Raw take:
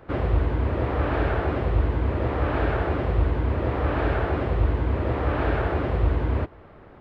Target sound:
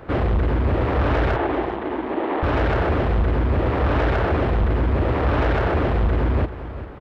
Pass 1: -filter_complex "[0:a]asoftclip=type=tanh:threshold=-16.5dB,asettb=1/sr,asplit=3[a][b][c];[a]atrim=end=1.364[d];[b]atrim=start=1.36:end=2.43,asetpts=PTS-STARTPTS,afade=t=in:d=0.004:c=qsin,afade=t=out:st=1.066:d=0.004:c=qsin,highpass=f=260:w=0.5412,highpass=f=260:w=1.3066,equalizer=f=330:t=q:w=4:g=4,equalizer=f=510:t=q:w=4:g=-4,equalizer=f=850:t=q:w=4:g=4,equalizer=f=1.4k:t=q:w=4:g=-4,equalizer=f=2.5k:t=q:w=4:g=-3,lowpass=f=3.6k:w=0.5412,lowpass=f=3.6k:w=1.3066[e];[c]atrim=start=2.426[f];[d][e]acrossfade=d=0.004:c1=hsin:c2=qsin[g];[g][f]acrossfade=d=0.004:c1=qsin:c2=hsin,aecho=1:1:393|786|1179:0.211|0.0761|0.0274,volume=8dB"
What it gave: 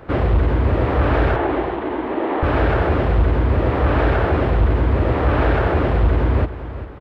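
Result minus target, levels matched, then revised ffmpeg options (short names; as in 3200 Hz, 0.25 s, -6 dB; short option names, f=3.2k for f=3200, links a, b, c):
soft clip: distortion -7 dB
-filter_complex "[0:a]asoftclip=type=tanh:threshold=-23.5dB,asettb=1/sr,asplit=3[a][b][c];[a]atrim=end=1.364[d];[b]atrim=start=1.36:end=2.43,asetpts=PTS-STARTPTS,afade=t=in:d=0.004:c=qsin,afade=t=out:st=1.066:d=0.004:c=qsin,highpass=f=260:w=0.5412,highpass=f=260:w=1.3066,equalizer=f=330:t=q:w=4:g=4,equalizer=f=510:t=q:w=4:g=-4,equalizer=f=850:t=q:w=4:g=4,equalizer=f=1.4k:t=q:w=4:g=-4,equalizer=f=2.5k:t=q:w=4:g=-3,lowpass=f=3.6k:w=0.5412,lowpass=f=3.6k:w=1.3066[e];[c]atrim=start=2.426[f];[d][e]acrossfade=d=0.004:c1=hsin:c2=qsin[g];[g][f]acrossfade=d=0.004:c1=qsin:c2=hsin,aecho=1:1:393|786|1179:0.211|0.0761|0.0274,volume=8dB"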